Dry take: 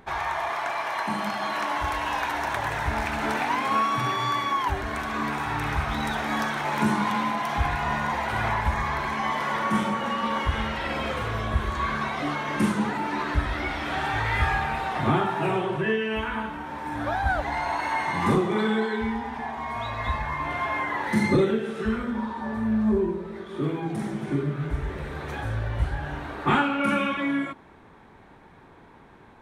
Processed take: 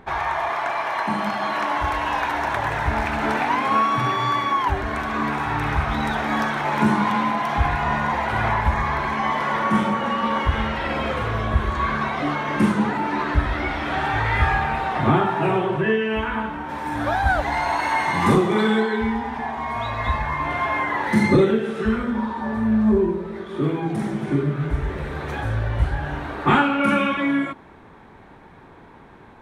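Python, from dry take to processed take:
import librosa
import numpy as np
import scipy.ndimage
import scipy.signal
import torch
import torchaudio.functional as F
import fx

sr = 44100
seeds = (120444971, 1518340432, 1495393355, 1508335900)

y = fx.high_shelf(x, sr, hz=4100.0, db=fx.steps((0.0, -9.0), (16.68, 2.0), (18.81, -4.0)))
y = F.gain(torch.from_numpy(y), 5.0).numpy()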